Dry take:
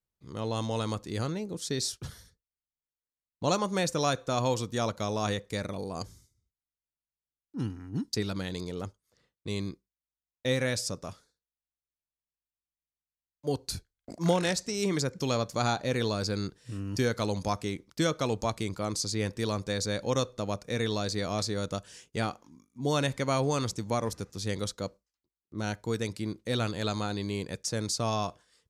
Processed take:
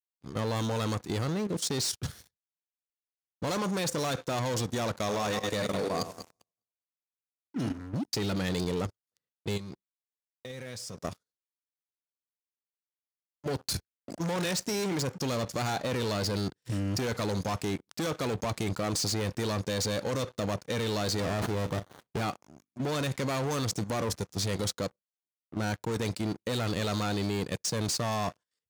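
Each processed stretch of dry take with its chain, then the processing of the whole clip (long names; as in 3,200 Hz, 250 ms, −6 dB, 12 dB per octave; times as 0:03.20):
0:04.99–0:07.78: feedback delay that plays each chunk backwards 102 ms, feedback 43%, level −7 dB + low-shelf EQ 150 Hz −9.5 dB
0:09.56–0:11.04: downward compressor, threshold −37 dBFS + notch comb filter 290 Hz
0:21.20–0:22.21: double-tracking delay 38 ms −12 dB + windowed peak hold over 17 samples
whole clip: leveller curve on the samples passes 5; high-pass filter 77 Hz 12 dB per octave; output level in coarse steps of 11 dB; level −8 dB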